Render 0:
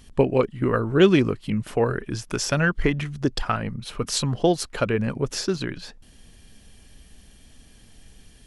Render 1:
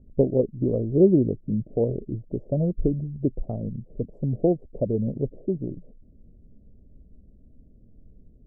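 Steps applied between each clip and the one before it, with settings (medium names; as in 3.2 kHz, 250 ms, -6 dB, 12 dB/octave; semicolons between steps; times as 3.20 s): local Wiener filter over 41 samples; elliptic low-pass 620 Hz, stop band 60 dB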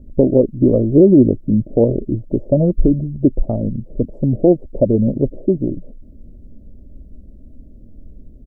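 comb 3.4 ms, depth 33%; loudness maximiser +12 dB; trim -1 dB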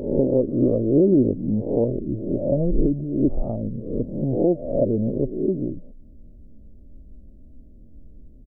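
reverse spectral sustain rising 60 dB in 0.73 s; trim -8.5 dB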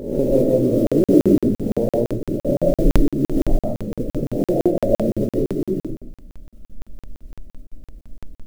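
modulation noise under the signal 30 dB; algorithmic reverb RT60 0.49 s, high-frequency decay 0.35×, pre-delay 105 ms, DRR -3 dB; crackling interface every 0.17 s, samples 2048, zero, from 0.87 s; trim -1 dB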